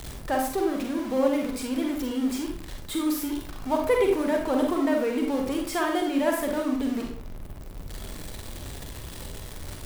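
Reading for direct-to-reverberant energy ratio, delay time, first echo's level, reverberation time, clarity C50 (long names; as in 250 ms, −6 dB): 1.0 dB, no echo audible, no echo audible, 0.55 s, 3.5 dB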